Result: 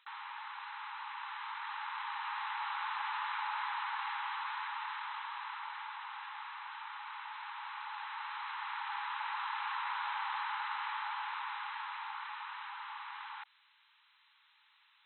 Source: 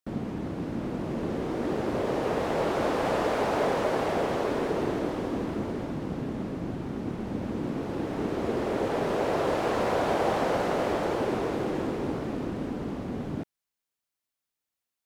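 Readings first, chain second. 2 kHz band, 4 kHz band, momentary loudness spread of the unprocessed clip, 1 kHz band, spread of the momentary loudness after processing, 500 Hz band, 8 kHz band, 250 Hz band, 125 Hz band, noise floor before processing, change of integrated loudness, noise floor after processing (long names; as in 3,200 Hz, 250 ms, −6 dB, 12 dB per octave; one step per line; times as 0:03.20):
−2.0 dB, −3.0 dB, 8 LU, −5.0 dB, 8 LU, below −40 dB, below −30 dB, below −40 dB, below −40 dB, below −85 dBFS, −10.5 dB, −69 dBFS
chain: linear-phase brick-wall band-pass 810–4,100 Hz
envelope flattener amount 50%
level −5 dB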